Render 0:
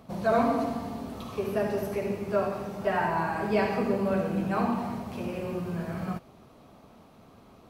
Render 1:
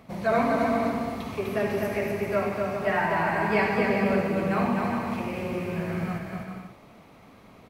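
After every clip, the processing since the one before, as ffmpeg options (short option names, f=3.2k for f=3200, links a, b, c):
-filter_complex "[0:a]equalizer=f=2.1k:w=2.5:g=9.5,asplit=2[a][b];[b]aecho=0:1:250|400|490|544|576.4:0.631|0.398|0.251|0.158|0.1[c];[a][c]amix=inputs=2:normalize=0"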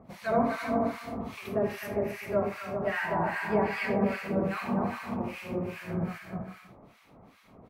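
-filter_complex "[0:a]acrossover=split=1200[a][b];[a]aeval=exprs='val(0)*(1-1/2+1/2*cos(2*PI*2.5*n/s))':c=same[c];[b]aeval=exprs='val(0)*(1-1/2-1/2*cos(2*PI*2.5*n/s))':c=same[d];[c][d]amix=inputs=2:normalize=0"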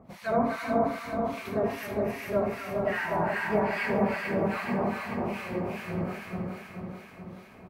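-af "aecho=1:1:432|864|1296|1728|2160|2592|3024|3456:0.531|0.313|0.185|0.109|0.0643|0.038|0.0224|0.0132"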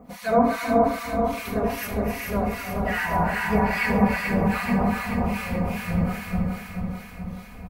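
-filter_complex "[0:a]aecho=1:1:4.1:0.73,asubboost=boost=9.5:cutoff=99,acrossover=split=2500[a][b];[b]crystalizer=i=1:c=0[c];[a][c]amix=inputs=2:normalize=0,volume=4dB"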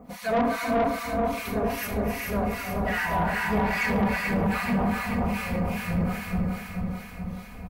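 -af "asoftclip=type=tanh:threshold=-18.5dB"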